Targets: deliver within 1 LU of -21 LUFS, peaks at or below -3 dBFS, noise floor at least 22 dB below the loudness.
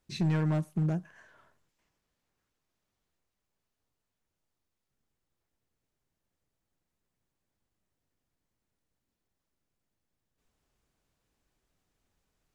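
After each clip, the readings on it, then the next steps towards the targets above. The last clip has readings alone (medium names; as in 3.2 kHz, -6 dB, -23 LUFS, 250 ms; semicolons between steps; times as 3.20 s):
clipped samples 0.3%; clipping level -22.5 dBFS; loudness -30.5 LUFS; peak level -22.5 dBFS; loudness target -21.0 LUFS
-> clip repair -22.5 dBFS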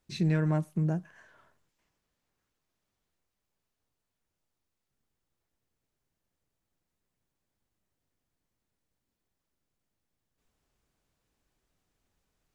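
clipped samples 0.0%; loudness -29.5 LUFS; peak level -16.5 dBFS; loudness target -21.0 LUFS
-> trim +8.5 dB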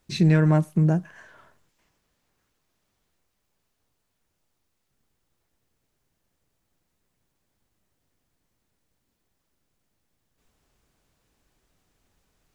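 loudness -21.0 LUFS; peak level -8.0 dBFS; noise floor -76 dBFS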